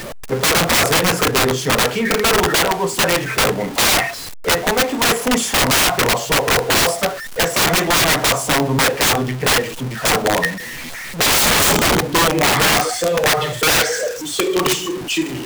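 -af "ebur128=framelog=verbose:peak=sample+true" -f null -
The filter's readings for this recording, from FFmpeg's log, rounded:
Integrated loudness:
  I:         -15.5 LUFS
  Threshold: -25.6 LUFS
Loudness range:
  LRA:         1.6 LU
  Threshold: -35.5 LUFS
  LRA low:   -16.2 LUFS
  LRA high:  -14.7 LUFS
Sample peak:
  Peak:       -9.4 dBFS
True peak:
  Peak:       -5.0 dBFS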